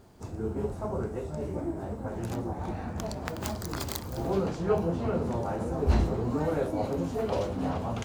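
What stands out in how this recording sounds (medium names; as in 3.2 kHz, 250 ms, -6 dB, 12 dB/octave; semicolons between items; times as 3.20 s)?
noise floor -39 dBFS; spectral tilt -7.0 dB/octave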